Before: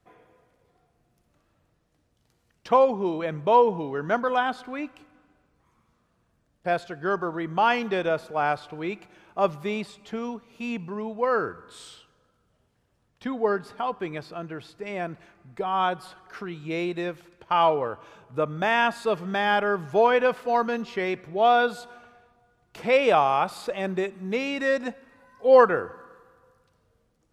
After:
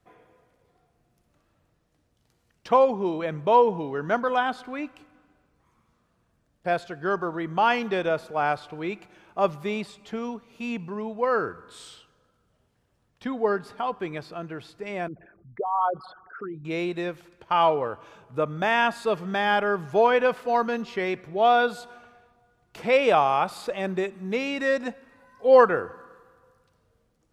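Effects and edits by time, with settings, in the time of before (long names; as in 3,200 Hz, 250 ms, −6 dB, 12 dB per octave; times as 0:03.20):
0:15.08–0:16.65: spectral envelope exaggerated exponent 3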